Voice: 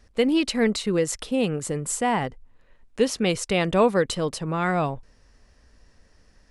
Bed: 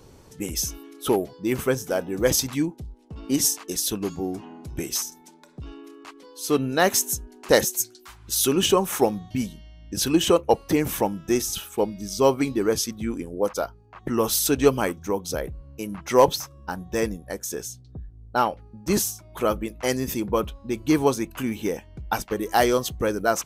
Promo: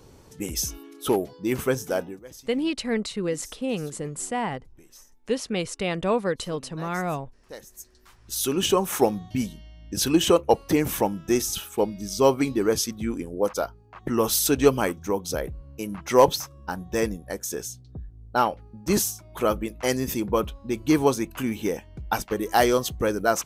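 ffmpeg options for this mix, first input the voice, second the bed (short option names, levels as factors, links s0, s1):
-filter_complex "[0:a]adelay=2300,volume=0.596[s0];[1:a]volume=14.1,afade=t=out:st=2:d=0.2:silence=0.0707946,afade=t=in:st=7.71:d=1.3:silence=0.0630957[s1];[s0][s1]amix=inputs=2:normalize=0"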